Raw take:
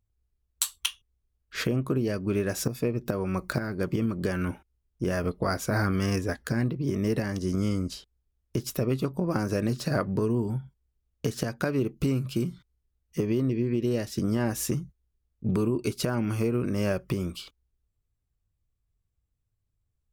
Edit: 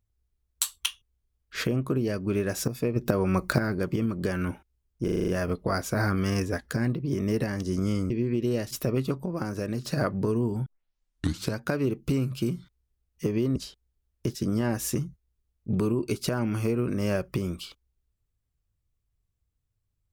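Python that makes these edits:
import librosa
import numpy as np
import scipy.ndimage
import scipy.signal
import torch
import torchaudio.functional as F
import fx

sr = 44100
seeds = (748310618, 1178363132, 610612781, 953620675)

y = fx.edit(x, sr, fx.clip_gain(start_s=2.96, length_s=0.83, db=4.5),
    fx.stutter(start_s=5.04, slice_s=0.04, count=7),
    fx.swap(start_s=7.86, length_s=0.79, other_s=13.5, other_length_s=0.61),
    fx.clip_gain(start_s=9.19, length_s=0.6, db=-4.0),
    fx.tape_start(start_s=10.6, length_s=0.93), tone=tone)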